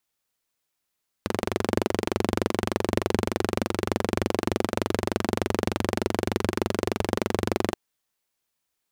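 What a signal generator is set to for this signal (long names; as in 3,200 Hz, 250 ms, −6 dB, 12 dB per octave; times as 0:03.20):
pulse-train model of a single-cylinder engine, steady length 6.48 s, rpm 2,800, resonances 100/220/350 Hz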